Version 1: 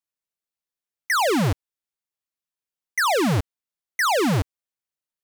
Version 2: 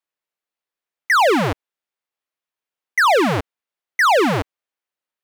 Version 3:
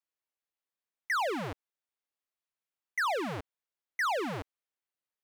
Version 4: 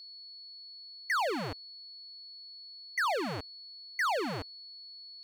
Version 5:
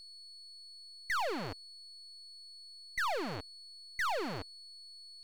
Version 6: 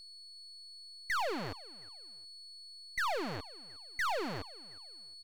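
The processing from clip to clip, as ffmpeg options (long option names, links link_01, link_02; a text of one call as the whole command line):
ffmpeg -i in.wav -af "bass=frequency=250:gain=-11,treble=frequency=4000:gain=-10,volume=7dB" out.wav
ffmpeg -i in.wav -af "alimiter=limit=-19dB:level=0:latency=1:release=39,volume=-7.5dB" out.wav
ffmpeg -i in.wav -af "aeval=exprs='val(0)+0.00501*sin(2*PI*4400*n/s)':channel_layout=same" out.wav
ffmpeg -i in.wav -af "aeval=exprs='if(lt(val(0),0),0.447*val(0),val(0))':channel_layout=same,volume=-1dB" out.wav
ffmpeg -i in.wav -af "aecho=1:1:360|720:0.0794|0.0254" out.wav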